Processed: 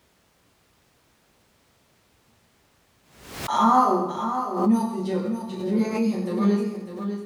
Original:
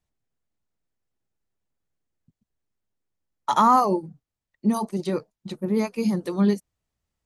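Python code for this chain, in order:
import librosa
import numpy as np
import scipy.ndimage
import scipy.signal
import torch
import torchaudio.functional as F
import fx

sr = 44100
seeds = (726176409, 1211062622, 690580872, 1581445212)

p1 = fx.rev_fdn(x, sr, rt60_s=0.99, lf_ratio=1.05, hf_ratio=0.8, size_ms=78.0, drr_db=-7.0)
p2 = fx.dmg_noise_colour(p1, sr, seeds[0], colour='pink', level_db=-52.0)
p3 = scipy.signal.sosfilt(scipy.signal.butter(2, 68.0, 'highpass', fs=sr, output='sos'), p2)
p4 = fx.high_shelf(p3, sr, hz=10000.0, db=-5.5)
p5 = p4 + fx.echo_single(p4, sr, ms=601, db=-9.0, dry=0)
p6 = fx.pre_swell(p5, sr, db_per_s=77.0)
y = p6 * librosa.db_to_amplitude(-9.0)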